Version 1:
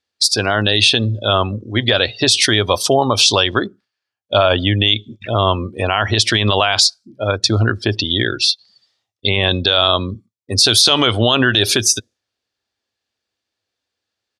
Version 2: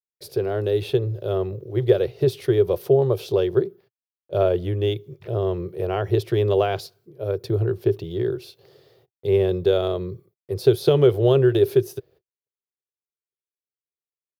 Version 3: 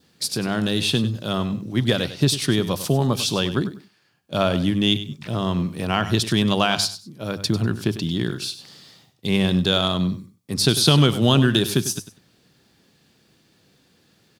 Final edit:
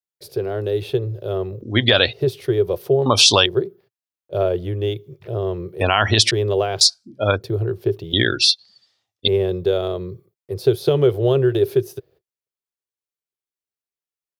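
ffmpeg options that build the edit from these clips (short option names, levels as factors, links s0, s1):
-filter_complex "[0:a]asplit=5[s0][s1][s2][s3][s4];[1:a]asplit=6[s5][s6][s7][s8][s9][s10];[s5]atrim=end=1.622[s11];[s0]atrim=start=1.618:end=2.132[s12];[s6]atrim=start=2.128:end=3.062[s13];[s1]atrim=start=3.058:end=3.462[s14];[s7]atrim=start=3.458:end=5.812[s15];[s2]atrim=start=5.808:end=6.312[s16];[s8]atrim=start=6.308:end=6.812[s17];[s3]atrim=start=6.808:end=7.422[s18];[s9]atrim=start=7.418:end=8.132[s19];[s4]atrim=start=8.128:end=9.282[s20];[s10]atrim=start=9.278[s21];[s11][s12]acrossfade=d=0.004:c1=hsin:c2=hsin[s22];[s22][s13]acrossfade=d=0.004:c1=hsin:c2=hsin[s23];[s23][s14]acrossfade=d=0.004:c1=hsin:c2=hsin[s24];[s24][s15]acrossfade=d=0.004:c1=hsin:c2=hsin[s25];[s25][s16]acrossfade=d=0.004:c1=hsin:c2=hsin[s26];[s26][s17]acrossfade=d=0.004:c1=hsin:c2=hsin[s27];[s27][s18]acrossfade=d=0.004:c1=hsin:c2=hsin[s28];[s28][s19]acrossfade=d=0.004:c1=hsin:c2=hsin[s29];[s29][s20]acrossfade=d=0.004:c1=hsin:c2=hsin[s30];[s30][s21]acrossfade=d=0.004:c1=hsin:c2=hsin"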